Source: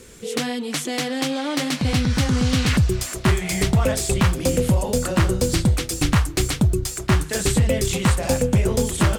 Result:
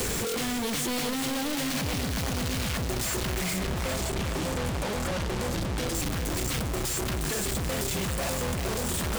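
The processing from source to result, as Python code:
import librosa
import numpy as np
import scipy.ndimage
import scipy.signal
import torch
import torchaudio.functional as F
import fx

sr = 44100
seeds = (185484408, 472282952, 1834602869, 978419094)

y = np.sign(x) * np.sqrt(np.mean(np.square(x)))
y = fx.lowpass(y, sr, hz=1400.0, slope=6, at=(3.58, 5.95))
y = 10.0 ** (-34.0 / 20.0) * np.tanh(y / 10.0 ** (-34.0 / 20.0))
y = fx.echo_feedback(y, sr, ms=398, feedback_pct=40, wet_db=-9.5)
y = fx.band_squash(y, sr, depth_pct=40)
y = F.gain(torch.from_numpy(y), 4.0).numpy()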